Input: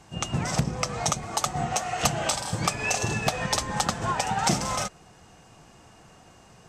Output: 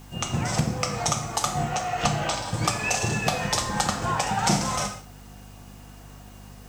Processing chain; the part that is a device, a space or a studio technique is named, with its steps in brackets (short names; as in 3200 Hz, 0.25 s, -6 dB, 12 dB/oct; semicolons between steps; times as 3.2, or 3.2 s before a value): 1.7–2.54 air absorption 79 m; non-linear reverb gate 0.2 s falling, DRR 4 dB; video cassette with head-switching buzz (buzz 50 Hz, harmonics 5, -46 dBFS -4 dB/oct; white noise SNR 30 dB)